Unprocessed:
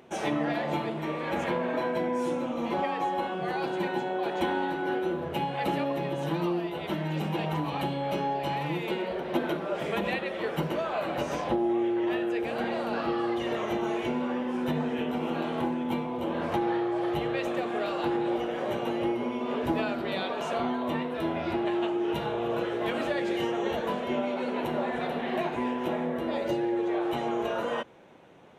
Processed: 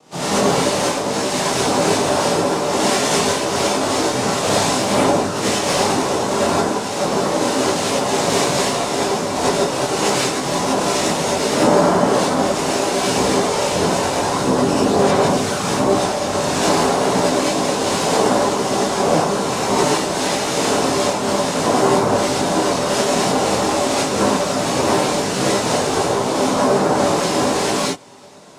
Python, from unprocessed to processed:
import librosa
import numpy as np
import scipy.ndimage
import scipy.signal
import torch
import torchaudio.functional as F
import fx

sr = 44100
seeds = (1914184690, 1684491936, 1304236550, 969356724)

y = fx.noise_vocoder(x, sr, seeds[0], bands=2)
y = fx.chorus_voices(y, sr, voices=4, hz=0.75, base_ms=20, depth_ms=4.9, mix_pct=55)
y = fx.rev_gated(y, sr, seeds[1], gate_ms=120, shape='rising', drr_db=-8.0)
y = F.gain(torch.from_numpy(y), 7.0).numpy()